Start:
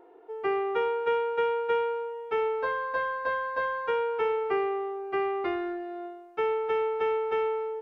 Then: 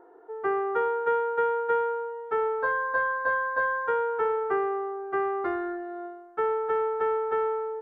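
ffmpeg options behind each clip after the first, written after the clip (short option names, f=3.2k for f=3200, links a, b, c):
-af "highshelf=f=2k:t=q:w=3:g=-7.5"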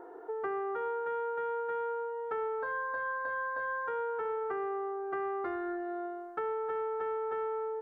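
-af "alimiter=limit=-22dB:level=0:latency=1:release=221,acompressor=threshold=-41dB:ratio=3,volume=5dB"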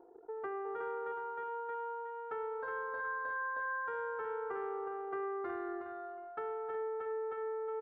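-af "aecho=1:1:365|730|1095|1460:0.447|0.161|0.0579|0.0208,anlmdn=0.0631,volume=-5.5dB"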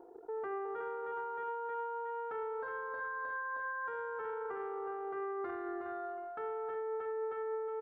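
-af "alimiter=level_in=13dB:limit=-24dB:level=0:latency=1:release=44,volume=-13dB,volume=4dB"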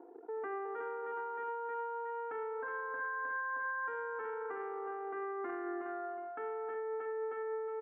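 -af "highpass=f=190:w=0.5412,highpass=f=190:w=1.3066,equalizer=f=190:t=q:w=4:g=-8,equalizer=f=270:t=q:w=4:g=4,equalizer=f=400:t=q:w=4:g=-5,equalizer=f=580:t=q:w=4:g=-8,equalizer=f=880:t=q:w=4:g=-4,equalizer=f=1.3k:t=q:w=4:g=-5,lowpass=f=2.5k:w=0.5412,lowpass=f=2.5k:w=1.3066,volume=4dB"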